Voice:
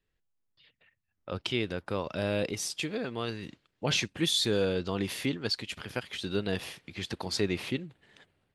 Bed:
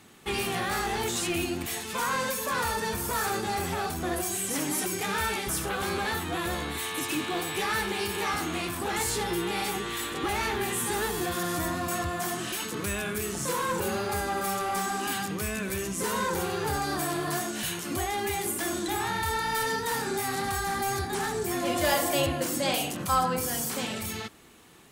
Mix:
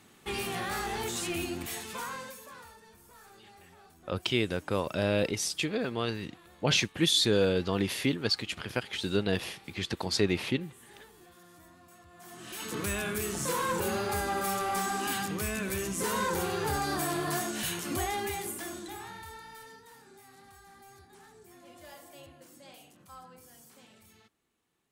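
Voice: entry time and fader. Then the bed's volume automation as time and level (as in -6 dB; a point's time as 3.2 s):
2.80 s, +2.5 dB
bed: 1.84 s -4.5 dB
2.83 s -26 dB
12.06 s -26 dB
12.74 s -1.5 dB
18.07 s -1.5 dB
19.96 s -25 dB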